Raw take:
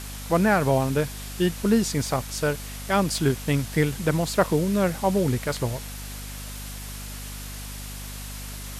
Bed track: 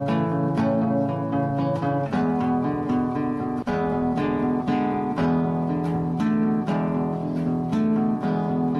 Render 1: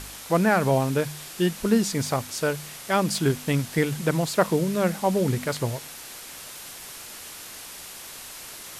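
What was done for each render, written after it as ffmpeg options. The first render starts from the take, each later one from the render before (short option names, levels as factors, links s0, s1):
-af "bandreject=f=50:t=h:w=4,bandreject=f=100:t=h:w=4,bandreject=f=150:t=h:w=4,bandreject=f=200:t=h:w=4,bandreject=f=250:t=h:w=4"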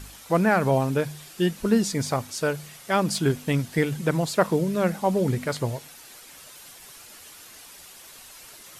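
-af "afftdn=nr=8:nf=-41"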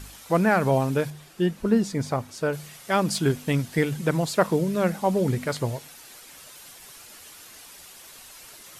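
-filter_complex "[0:a]asettb=1/sr,asplit=3[s0][s1][s2];[s0]atrim=end=1.104[s3];[s1]atrim=start=1.1:end=2.53,asetpts=PTS-STARTPTS,afade=t=in:d=0.004:c=qsin,afade=t=out:st=1.426:d=0.004:c=qsin,highshelf=f=2400:g=-9[s4];[s2]atrim=start=2.526[s5];[s3][s4]acrossfade=d=0.004:c1=hsin:c2=qsin[s6];[s6][s5]acrossfade=d=0.004:c1=qsin:c2=hsin"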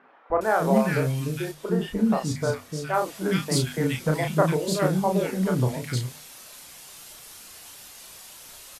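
-filter_complex "[0:a]asplit=2[s0][s1];[s1]adelay=32,volume=0.631[s2];[s0][s2]amix=inputs=2:normalize=0,acrossover=split=350|1700[s3][s4][s5];[s3]adelay=300[s6];[s5]adelay=410[s7];[s6][s4][s7]amix=inputs=3:normalize=0"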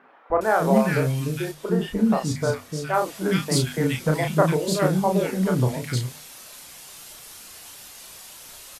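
-af "volume=1.26"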